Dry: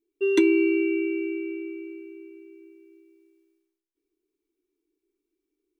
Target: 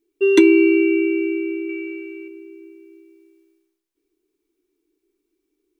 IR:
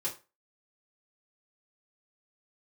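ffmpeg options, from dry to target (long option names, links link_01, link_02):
-filter_complex "[0:a]asettb=1/sr,asplit=3[link_01][link_02][link_03];[link_01]atrim=end=1.694[link_04];[link_02]atrim=start=1.69:end=2.28,asetpts=PTS-STARTPTS,afade=type=in:duration=0.004:curve=qsin,afade=type=out:start_time=0.586:duration=0.004:curve=qsin,equalizer=frequency=2100:width=0.71:gain=8.5[link_05];[link_03]atrim=start=2.276[link_06];[link_04][link_05]acrossfade=duration=0.004:curve1=hsin:curve2=qsin[link_07];[link_07][link_06]acrossfade=duration=0.004:curve1=qsin:curve2=hsin,volume=7.5dB"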